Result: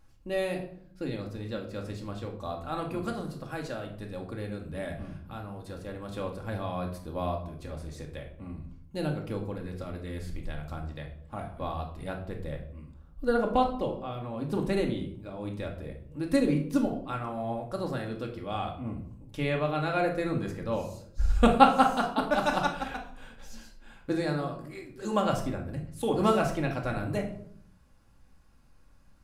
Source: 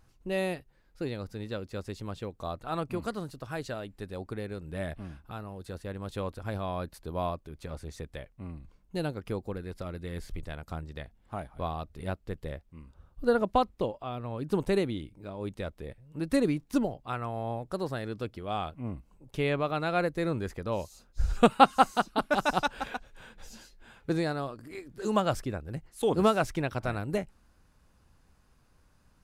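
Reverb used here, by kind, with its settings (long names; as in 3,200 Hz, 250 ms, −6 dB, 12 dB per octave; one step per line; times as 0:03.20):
rectangular room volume 940 cubic metres, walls furnished, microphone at 2.3 metres
level −2.5 dB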